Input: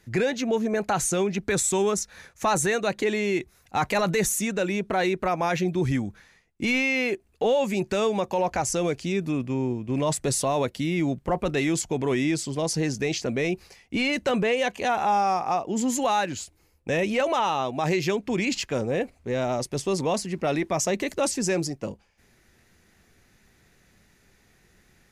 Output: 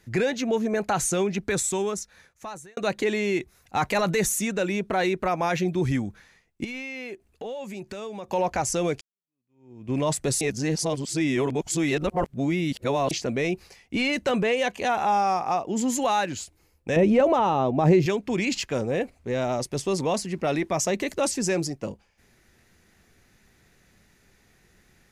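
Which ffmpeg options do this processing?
-filter_complex "[0:a]asettb=1/sr,asplit=3[s0][s1][s2];[s0]atrim=end=6.644[s3];[s1]atrim=start=6.64:end=8.29,asetpts=PTS-STARTPTS,afade=t=in:d=0.004:c=qsin,afade=t=out:st=1.646:d=0.004:c=qsin,acompressor=threshold=0.0126:ratio=2.5:attack=3.2:release=140:knee=1:detection=peak[s4];[s2]atrim=start=8.286[s5];[s3][s4]acrossfade=d=0.004:c1=hsin:c2=qsin[s6];[s6][s5]acrossfade=d=0.004:c1=qsin:c2=hsin,asettb=1/sr,asplit=3[s7][s8][s9];[s7]atrim=end=16.964[s10];[s8]atrim=start=16.96:end=18.06,asetpts=PTS-STARTPTS,afade=t=in:d=0.004:c=qsin,afade=t=out:st=1.096:d=0.004:c=qsin,tiltshelf=f=1100:g=9[s11];[s9]atrim=start=18.056[s12];[s10][s11]acrossfade=d=0.004:c1=hsin:c2=qsin[s13];[s13][s12]acrossfade=d=0.004:c1=qsin:c2=hsin,asplit=5[s14][s15][s16][s17][s18];[s14]atrim=end=2.77,asetpts=PTS-STARTPTS,afade=t=out:st=1.35:d=1.42[s19];[s15]atrim=start=2.77:end=9.01,asetpts=PTS-STARTPTS,afade=t=in:d=0.004:c=hsin,afade=t=out:st=6.236:d=0.004:c=hsin[s20];[s16]atrim=start=9.01:end=10.412,asetpts=PTS-STARTPTS,afade=t=in:d=0.88:c=exp[s21];[s17]atrim=start=10.408:end=13.112,asetpts=PTS-STARTPTS,areverse[s22];[s18]atrim=start=13.108[s23];[s19][s20][s21]concat=n=3:v=0:a=1[s24];[s24][s22]acrossfade=d=0.004:c1=hsin:c2=hsin[s25];[s25][s23]acrossfade=d=0.004:c1=hsin:c2=hsin"

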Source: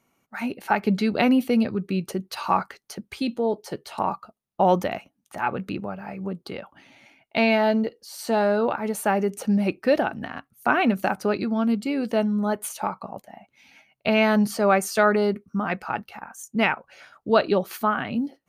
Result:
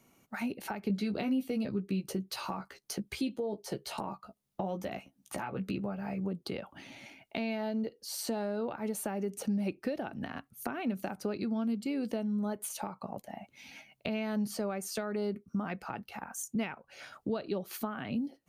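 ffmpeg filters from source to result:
-filter_complex "[0:a]asettb=1/sr,asplit=3[s0][s1][s2];[s0]atrim=end=0.884[s3];[s1]atrim=start=0.88:end=6.2,asetpts=PTS-STARTPTS,afade=t=in:d=0.004:c=qsin,afade=t=out:st=5.316:d=0.004:c=qsin,asplit=2[s4][s5];[s5]adelay=15,volume=0.562[s6];[s4][s6]amix=inputs=2:normalize=0,atrim=end_sample=234612[s7];[s2]atrim=start=6.196[s8];[s3][s7]acrossfade=d=0.004:c1=hsin:c2=qsin[s9];[s9][s8]acrossfade=d=0.004:c1=qsin:c2=hsin,acompressor=threshold=0.01:ratio=3,equalizer=f=1300:w=0.6:g=-5.5,acrossover=split=380[s10][s11];[s11]acompressor=threshold=0.01:ratio=6[s12];[s10][s12]amix=inputs=2:normalize=0,volume=1.88"

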